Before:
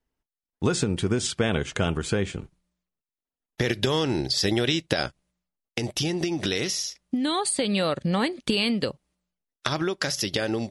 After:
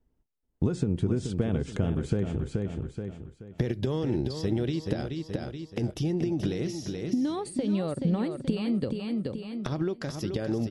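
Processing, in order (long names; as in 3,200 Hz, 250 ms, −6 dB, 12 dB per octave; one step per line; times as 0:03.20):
repeating echo 428 ms, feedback 31%, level −8.5 dB
downward compressor 3 to 1, threshold −36 dBFS, peak gain reduction 13.5 dB
tilt shelving filter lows +9.5 dB, about 730 Hz
level +2 dB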